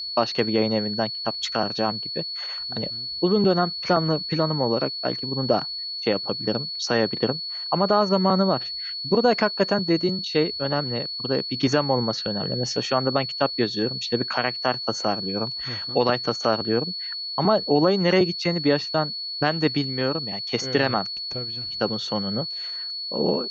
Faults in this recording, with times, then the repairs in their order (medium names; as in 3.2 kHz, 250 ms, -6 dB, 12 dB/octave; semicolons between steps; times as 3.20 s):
whine 4.4 kHz -29 dBFS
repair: band-stop 4.4 kHz, Q 30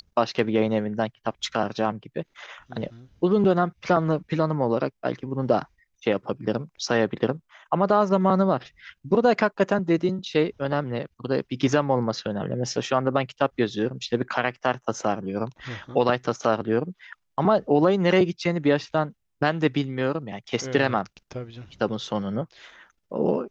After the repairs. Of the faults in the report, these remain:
nothing left